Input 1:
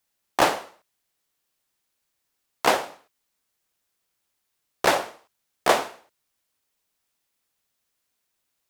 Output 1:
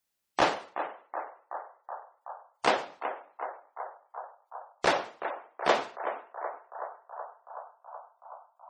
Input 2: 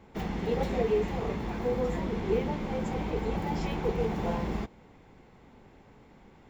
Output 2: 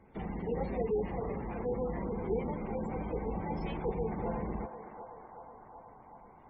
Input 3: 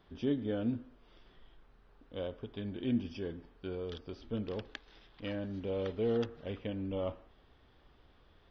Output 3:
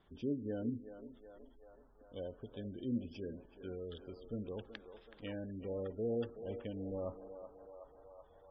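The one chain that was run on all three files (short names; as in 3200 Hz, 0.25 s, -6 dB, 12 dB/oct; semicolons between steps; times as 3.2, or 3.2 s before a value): narrowing echo 0.375 s, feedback 82%, band-pass 900 Hz, level -8 dB; spectral gate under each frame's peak -25 dB strong; gain -5 dB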